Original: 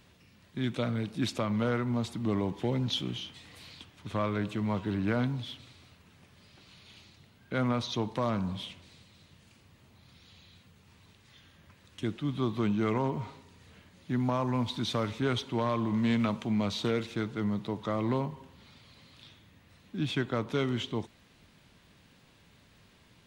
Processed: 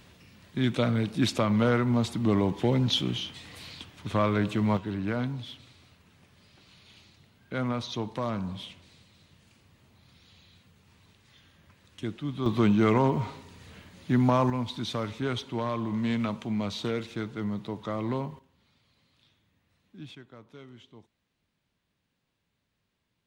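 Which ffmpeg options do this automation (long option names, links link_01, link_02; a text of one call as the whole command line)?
ffmpeg -i in.wav -af "asetnsamples=nb_out_samples=441:pad=0,asendcmd='4.77 volume volume -1dB;12.46 volume volume 6.5dB;14.5 volume volume -1dB;18.39 volume volume -12dB;20.15 volume volume -18.5dB',volume=5.5dB" out.wav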